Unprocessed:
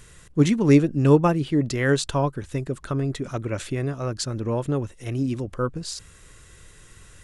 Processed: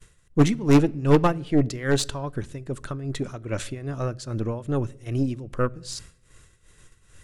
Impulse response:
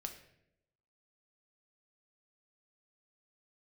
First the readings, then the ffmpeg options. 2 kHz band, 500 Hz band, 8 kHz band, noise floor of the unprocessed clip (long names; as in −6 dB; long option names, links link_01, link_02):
−2.5 dB, −2.0 dB, −1.0 dB, −50 dBFS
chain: -filter_complex "[0:a]agate=range=-33dB:threshold=-42dB:ratio=3:detection=peak,tremolo=f=2.5:d=0.78,aeval=exprs='0.473*(cos(1*acos(clip(val(0)/0.473,-1,1)))-cos(1*PI/2))+0.075*(cos(6*acos(clip(val(0)/0.473,-1,1)))-cos(6*PI/2))+0.0299*(cos(8*acos(clip(val(0)/0.473,-1,1)))-cos(8*PI/2))':channel_layout=same,aeval=exprs='clip(val(0),-1,0.251)':channel_layout=same,asplit=2[link_01][link_02];[1:a]atrim=start_sample=2205,lowshelf=frequency=200:gain=9[link_03];[link_02][link_03]afir=irnorm=-1:irlink=0,volume=-12dB[link_04];[link_01][link_04]amix=inputs=2:normalize=0"